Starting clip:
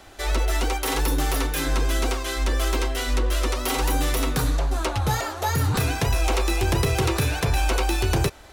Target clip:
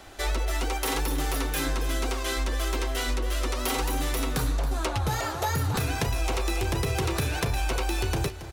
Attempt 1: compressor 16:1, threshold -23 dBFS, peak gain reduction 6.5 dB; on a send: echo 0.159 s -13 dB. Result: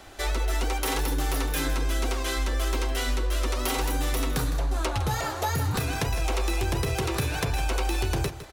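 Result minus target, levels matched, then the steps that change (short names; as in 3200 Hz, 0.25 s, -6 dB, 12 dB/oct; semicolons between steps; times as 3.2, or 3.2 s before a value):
echo 0.117 s early
change: echo 0.276 s -13 dB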